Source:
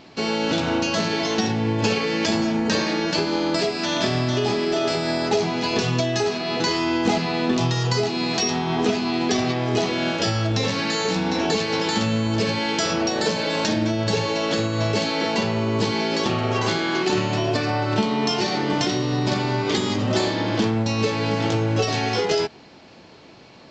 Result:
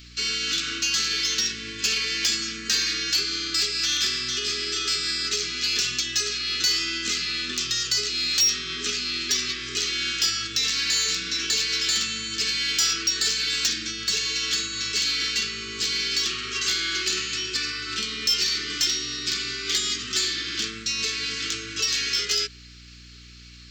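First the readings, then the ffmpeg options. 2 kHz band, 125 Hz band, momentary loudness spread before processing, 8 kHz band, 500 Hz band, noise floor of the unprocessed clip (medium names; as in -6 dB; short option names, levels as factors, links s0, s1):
-1.0 dB, -20.0 dB, 1 LU, +8.0 dB, -18.5 dB, -46 dBFS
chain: -filter_complex "[0:a]asuperstop=centerf=720:order=12:qfactor=0.96,aderivative,asplit=2[s0][s1];[s1]aeval=exprs='0.2*sin(PI/2*2.82*val(0)/0.2)':c=same,volume=0.708[s2];[s0][s2]amix=inputs=2:normalize=0,aeval=exprs='val(0)+0.00562*(sin(2*PI*60*n/s)+sin(2*PI*2*60*n/s)/2+sin(2*PI*3*60*n/s)/3+sin(2*PI*4*60*n/s)/4+sin(2*PI*5*60*n/s)/5)':c=same,volume=0.794"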